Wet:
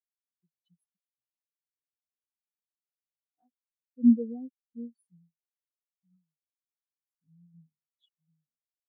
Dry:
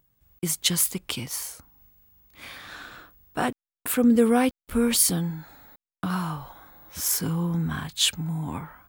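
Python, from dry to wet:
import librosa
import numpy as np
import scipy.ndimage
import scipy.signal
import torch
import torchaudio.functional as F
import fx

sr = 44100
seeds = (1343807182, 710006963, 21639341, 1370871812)

y = fx.power_curve(x, sr, exponent=1.4)
y = np.clip(y, -10.0 ** (-19.5 / 20.0), 10.0 ** (-19.5 / 20.0))
y = fx.spectral_expand(y, sr, expansion=4.0)
y = y * 10.0 ** (8.5 / 20.0)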